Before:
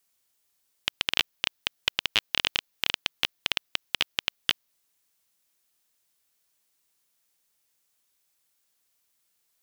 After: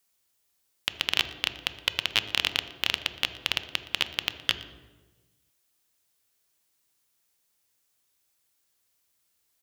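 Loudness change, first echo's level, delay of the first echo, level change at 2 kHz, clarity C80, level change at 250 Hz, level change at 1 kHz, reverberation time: 0.0 dB, -21.0 dB, 0.118 s, 0.0 dB, 13.0 dB, +2.0 dB, +0.5 dB, 1.3 s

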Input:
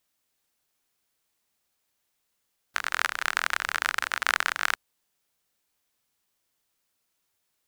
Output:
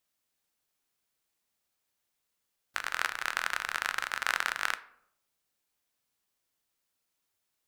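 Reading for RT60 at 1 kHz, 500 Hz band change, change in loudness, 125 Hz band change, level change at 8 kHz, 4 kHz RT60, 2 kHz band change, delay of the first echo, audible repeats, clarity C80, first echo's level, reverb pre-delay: 0.65 s, -4.5 dB, -5.0 dB, n/a, -5.0 dB, 0.40 s, -5.0 dB, none, none, 19.5 dB, none, 8 ms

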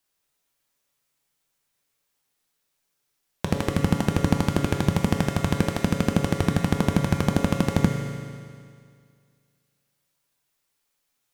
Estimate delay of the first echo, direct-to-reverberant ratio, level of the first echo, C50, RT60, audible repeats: none, 1.0 dB, none, 3.0 dB, 2.1 s, none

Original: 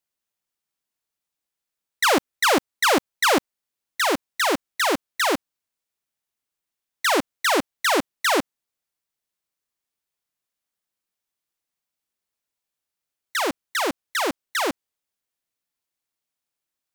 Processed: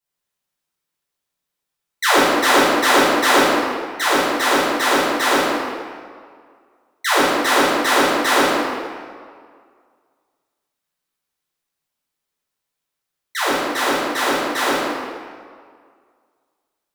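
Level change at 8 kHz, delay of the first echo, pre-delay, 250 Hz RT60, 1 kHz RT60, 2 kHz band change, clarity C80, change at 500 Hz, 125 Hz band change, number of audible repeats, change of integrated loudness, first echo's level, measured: +4.0 dB, none, 4 ms, 1.9 s, 2.0 s, +6.0 dB, -1.0 dB, +6.5 dB, +8.0 dB, none, +5.5 dB, none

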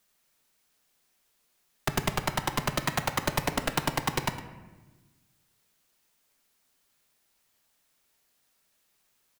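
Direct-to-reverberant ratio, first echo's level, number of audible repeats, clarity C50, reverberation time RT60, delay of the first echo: 6.5 dB, -16.0 dB, 1, 9.5 dB, 1.2 s, 0.109 s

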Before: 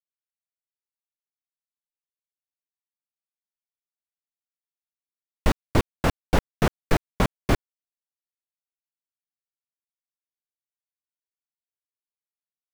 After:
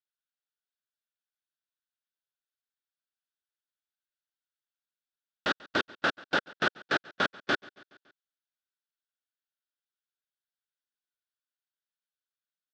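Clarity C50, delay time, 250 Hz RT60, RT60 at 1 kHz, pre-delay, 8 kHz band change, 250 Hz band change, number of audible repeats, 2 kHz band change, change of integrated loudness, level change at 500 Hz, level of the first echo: none, 0.14 s, none, none, none, -11.0 dB, -10.5 dB, 3, +4.0 dB, -4.5 dB, -7.0 dB, -22.5 dB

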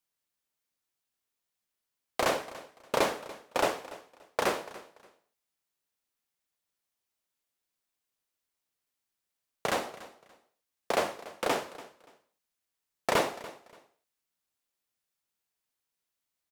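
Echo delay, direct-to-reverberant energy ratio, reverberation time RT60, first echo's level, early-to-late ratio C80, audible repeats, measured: 0.288 s, none, none, -18.0 dB, none, 2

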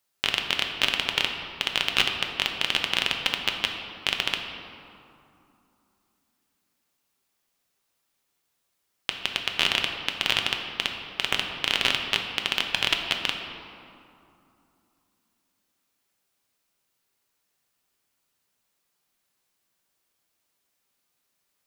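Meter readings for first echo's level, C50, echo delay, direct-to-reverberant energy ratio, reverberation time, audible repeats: none, 4.5 dB, none, 2.5 dB, 2.7 s, none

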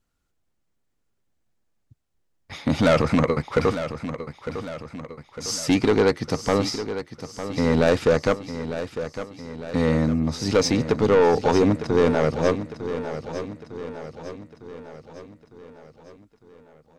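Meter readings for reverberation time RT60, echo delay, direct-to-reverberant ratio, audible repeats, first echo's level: none, 0.904 s, none, 5, -11.0 dB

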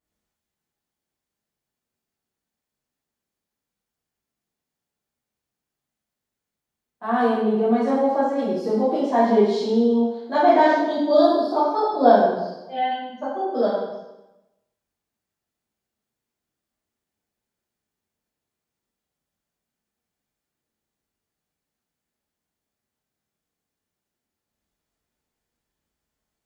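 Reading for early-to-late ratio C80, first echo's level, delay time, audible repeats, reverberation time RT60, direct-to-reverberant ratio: 3.0 dB, none, none, none, 1.0 s, -10.0 dB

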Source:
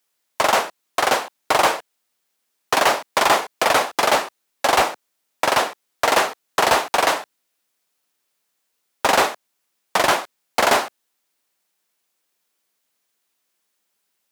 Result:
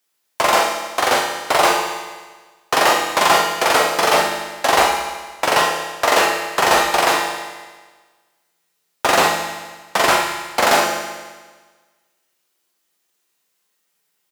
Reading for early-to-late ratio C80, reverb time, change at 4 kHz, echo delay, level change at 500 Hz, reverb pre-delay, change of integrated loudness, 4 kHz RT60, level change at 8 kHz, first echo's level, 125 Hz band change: 5.5 dB, 1.4 s, +3.5 dB, 41 ms, +2.5 dB, 6 ms, +2.5 dB, 1.4 s, +3.5 dB, -6.5 dB, +4.0 dB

